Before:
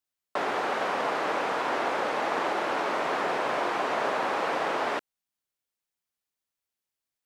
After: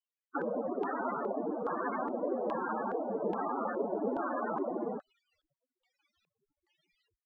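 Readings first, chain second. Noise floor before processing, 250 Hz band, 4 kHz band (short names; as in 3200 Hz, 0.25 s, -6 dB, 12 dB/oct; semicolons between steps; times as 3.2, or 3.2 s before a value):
under -85 dBFS, +1.0 dB, under -30 dB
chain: cycle switcher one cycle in 2, inverted; reverse; upward compressor, threshold -36 dBFS; reverse; loudest bins only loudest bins 16; LFO low-pass square 1.2 Hz 490–3000 Hz; gain -2.5 dB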